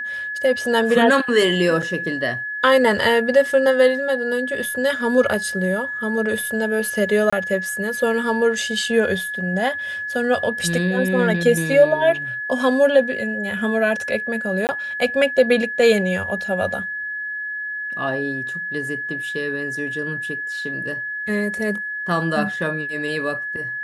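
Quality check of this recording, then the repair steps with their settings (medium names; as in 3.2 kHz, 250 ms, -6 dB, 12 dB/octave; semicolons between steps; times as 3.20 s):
whine 1.7 kHz -25 dBFS
1.82 s: dropout 5 ms
7.30–7.33 s: dropout 25 ms
14.67–14.69 s: dropout 19 ms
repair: band-stop 1.7 kHz, Q 30; interpolate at 1.82 s, 5 ms; interpolate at 7.30 s, 25 ms; interpolate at 14.67 s, 19 ms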